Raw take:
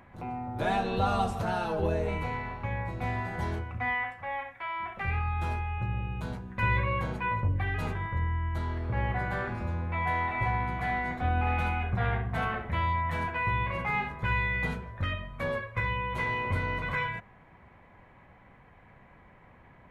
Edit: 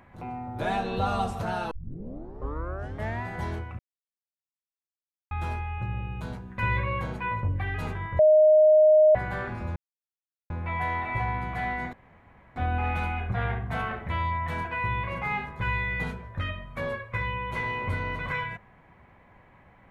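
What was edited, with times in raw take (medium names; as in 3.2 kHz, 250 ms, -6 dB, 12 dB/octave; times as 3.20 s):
1.71 s: tape start 1.52 s
3.79–5.31 s: mute
8.19–9.15 s: bleep 618 Hz -13.5 dBFS
9.76 s: insert silence 0.74 s
11.19 s: insert room tone 0.63 s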